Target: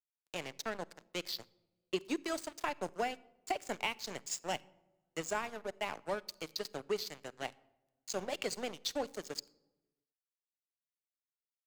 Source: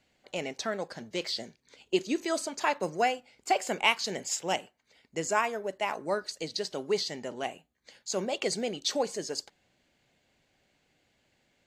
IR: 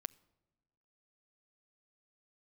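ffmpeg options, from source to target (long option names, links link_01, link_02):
-filter_complex "[0:a]equalizer=frequency=69:width=0.64:gain=-7.5,aeval=exprs='sgn(val(0))*max(abs(val(0))-0.015,0)':channel_layout=same,acrossover=split=270[link_01][link_02];[link_02]acompressor=threshold=-31dB:ratio=6[link_03];[link_01][link_03]amix=inputs=2:normalize=0[link_04];[1:a]atrim=start_sample=2205[link_05];[link_04][link_05]afir=irnorm=-1:irlink=0,volume=2dB"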